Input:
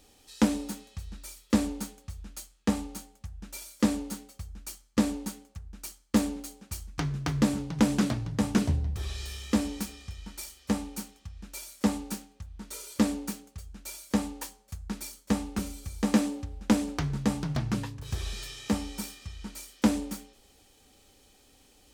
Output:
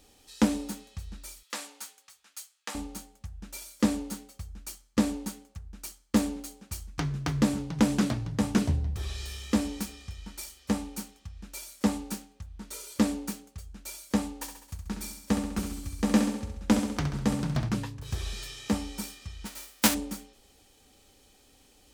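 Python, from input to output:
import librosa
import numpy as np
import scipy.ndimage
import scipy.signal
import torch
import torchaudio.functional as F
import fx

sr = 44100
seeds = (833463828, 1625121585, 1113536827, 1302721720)

y = fx.highpass(x, sr, hz=1100.0, slope=12, at=(1.43, 2.75))
y = fx.echo_feedback(y, sr, ms=67, feedback_pct=56, wet_db=-8.0, at=(14.34, 17.69))
y = fx.envelope_flatten(y, sr, power=0.3, at=(19.45, 19.93), fade=0.02)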